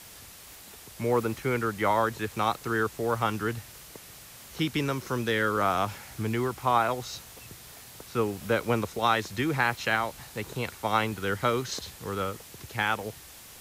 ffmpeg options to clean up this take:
ffmpeg -i in.wav -af "afwtdn=0.0045" out.wav

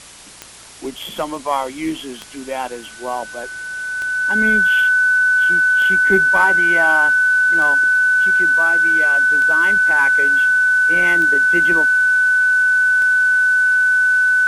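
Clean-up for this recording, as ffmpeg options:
ffmpeg -i in.wav -af "adeclick=threshold=4,bandreject=frequency=57:width_type=h:width=4,bandreject=frequency=114:width_type=h:width=4,bandreject=frequency=171:width_type=h:width=4,bandreject=frequency=1500:width=30,afwtdn=0.013" out.wav

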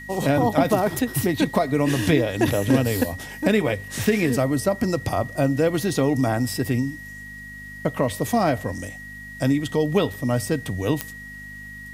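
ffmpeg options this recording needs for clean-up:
ffmpeg -i in.wav -af "adeclick=threshold=4,bandreject=frequency=50.8:width_type=h:width=4,bandreject=frequency=101.6:width_type=h:width=4,bandreject=frequency=152.4:width_type=h:width=4,bandreject=frequency=203.2:width_type=h:width=4,bandreject=frequency=254:width_type=h:width=4,bandreject=frequency=1900:width=30,agate=range=-21dB:threshold=-30dB" out.wav

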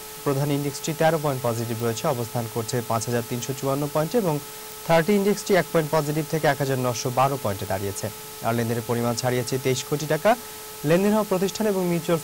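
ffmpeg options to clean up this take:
ffmpeg -i in.wav -af "adeclick=threshold=4,bandreject=frequency=430.9:width_type=h:width=4,bandreject=frequency=861.8:width_type=h:width=4,bandreject=frequency=1292.7:width_type=h:width=4,afftdn=noise_reduction=30:noise_floor=-38" out.wav

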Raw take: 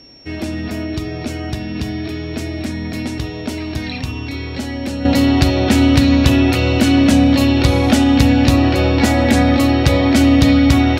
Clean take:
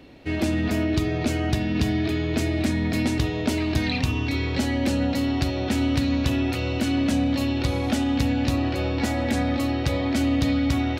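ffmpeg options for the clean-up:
ffmpeg -i in.wav -af "bandreject=frequency=5500:width=30,asetnsamples=nb_out_samples=441:pad=0,asendcmd='5.05 volume volume -11dB',volume=0dB" out.wav

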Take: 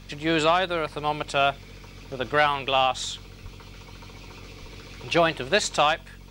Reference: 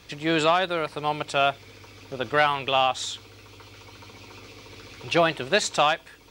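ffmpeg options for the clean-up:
ffmpeg -i in.wav -filter_complex "[0:a]bandreject=frequency=46:width_type=h:width=4,bandreject=frequency=92:width_type=h:width=4,bandreject=frequency=138:width_type=h:width=4,bandreject=frequency=184:width_type=h:width=4,bandreject=frequency=230:width_type=h:width=4,asplit=3[link_01][link_02][link_03];[link_01]afade=type=out:start_time=3.42:duration=0.02[link_04];[link_02]highpass=frequency=140:width=0.5412,highpass=frequency=140:width=1.3066,afade=type=in:start_time=3.42:duration=0.02,afade=type=out:start_time=3.54:duration=0.02[link_05];[link_03]afade=type=in:start_time=3.54:duration=0.02[link_06];[link_04][link_05][link_06]amix=inputs=3:normalize=0,asplit=3[link_07][link_08][link_09];[link_07]afade=type=out:start_time=4.61:duration=0.02[link_10];[link_08]highpass=frequency=140:width=0.5412,highpass=frequency=140:width=1.3066,afade=type=in:start_time=4.61:duration=0.02,afade=type=out:start_time=4.73:duration=0.02[link_11];[link_09]afade=type=in:start_time=4.73:duration=0.02[link_12];[link_10][link_11][link_12]amix=inputs=3:normalize=0" out.wav

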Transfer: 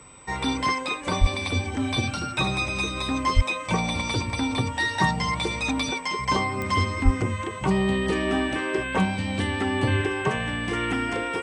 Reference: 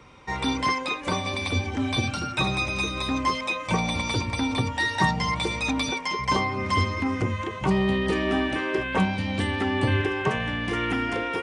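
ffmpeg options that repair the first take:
ffmpeg -i in.wav -filter_complex "[0:a]adeclick=threshold=4,bandreject=frequency=8000:width=30,asplit=3[link_01][link_02][link_03];[link_01]afade=type=out:start_time=1.2:duration=0.02[link_04];[link_02]highpass=frequency=140:width=0.5412,highpass=frequency=140:width=1.3066,afade=type=in:start_time=1.2:duration=0.02,afade=type=out:start_time=1.32:duration=0.02[link_05];[link_03]afade=type=in:start_time=1.32:duration=0.02[link_06];[link_04][link_05][link_06]amix=inputs=3:normalize=0,asplit=3[link_07][link_08][link_09];[link_07]afade=type=out:start_time=3.35:duration=0.02[link_10];[link_08]highpass=frequency=140:width=0.5412,highpass=frequency=140:width=1.3066,afade=type=in:start_time=3.35:duration=0.02,afade=type=out:start_time=3.47:duration=0.02[link_11];[link_09]afade=type=in:start_time=3.47:duration=0.02[link_12];[link_10][link_11][link_12]amix=inputs=3:normalize=0,asplit=3[link_13][link_14][link_15];[link_13]afade=type=out:start_time=7.04:duration=0.02[link_16];[link_14]highpass=frequency=140:width=0.5412,highpass=frequency=140:width=1.3066,afade=type=in:start_time=7.04:duration=0.02,afade=type=out:start_time=7.16:duration=0.02[link_17];[link_15]afade=type=in:start_time=7.16:duration=0.02[link_18];[link_16][link_17][link_18]amix=inputs=3:normalize=0" out.wav

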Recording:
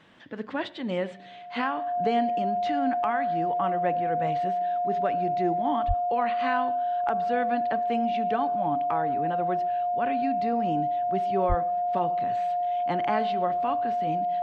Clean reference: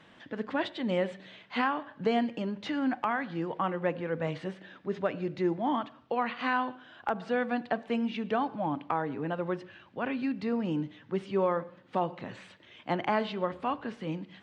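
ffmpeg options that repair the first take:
ffmpeg -i in.wav -filter_complex "[0:a]bandreject=frequency=710:width=30,asplit=3[link_01][link_02][link_03];[link_01]afade=type=out:start_time=5.87:duration=0.02[link_04];[link_02]highpass=frequency=140:width=0.5412,highpass=frequency=140:width=1.3066,afade=type=in:start_time=5.87:duration=0.02,afade=type=out:start_time=5.99:duration=0.02[link_05];[link_03]afade=type=in:start_time=5.99:duration=0.02[link_06];[link_04][link_05][link_06]amix=inputs=3:normalize=0,asplit=3[link_07][link_08][link_09];[link_07]afade=type=out:start_time=11.48:duration=0.02[link_10];[link_08]highpass=frequency=140:width=0.5412,highpass=frequency=140:width=1.3066,afade=type=in:start_time=11.48:duration=0.02,afade=type=out:start_time=11.6:duration=0.02[link_11];[link_09]afade=type=in:start_time=11.6:duration=0.02[link_12];[link_10][link_11][link_12]amix=inputs=3:normalize=0" out.wav

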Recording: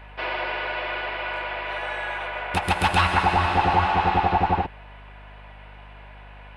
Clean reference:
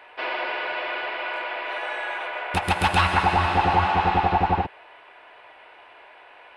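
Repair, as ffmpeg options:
ffmpeg -i in.wav -af "bandreject=frequency=50.4:width_type=h:width=4,bandreject=frequency=100.8:width_type=h:width=4,bandreject=frequency=151.2:width_type=h:width=4,bandreject=frequency=201.6:width_type=h:width=4,bandreject=frequency=252:width_type=h:width=4" out.wav

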